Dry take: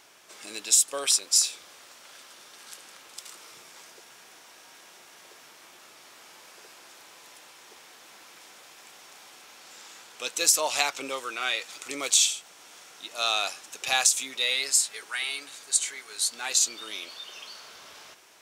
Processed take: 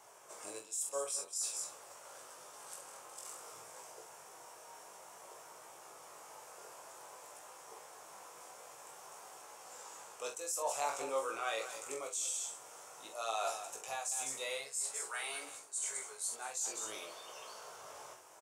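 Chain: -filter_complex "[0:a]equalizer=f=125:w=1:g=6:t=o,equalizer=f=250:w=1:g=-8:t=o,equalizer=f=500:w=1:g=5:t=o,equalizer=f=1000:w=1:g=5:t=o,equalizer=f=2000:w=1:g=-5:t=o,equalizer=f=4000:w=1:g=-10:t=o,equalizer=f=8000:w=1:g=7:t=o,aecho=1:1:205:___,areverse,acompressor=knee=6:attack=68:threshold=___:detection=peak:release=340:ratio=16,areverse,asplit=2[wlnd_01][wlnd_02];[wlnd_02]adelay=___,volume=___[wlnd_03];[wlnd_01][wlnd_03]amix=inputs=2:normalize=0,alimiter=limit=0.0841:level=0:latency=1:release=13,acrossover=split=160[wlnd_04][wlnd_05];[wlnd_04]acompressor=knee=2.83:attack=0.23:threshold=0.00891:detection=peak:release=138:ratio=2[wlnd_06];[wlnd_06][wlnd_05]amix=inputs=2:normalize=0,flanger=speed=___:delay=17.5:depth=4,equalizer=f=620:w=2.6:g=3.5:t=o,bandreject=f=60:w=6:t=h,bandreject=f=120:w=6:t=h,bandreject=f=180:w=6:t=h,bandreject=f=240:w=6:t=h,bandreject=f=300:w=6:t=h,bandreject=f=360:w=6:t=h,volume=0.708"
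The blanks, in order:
0.168, 0.0224, 45, 0.398, 0.52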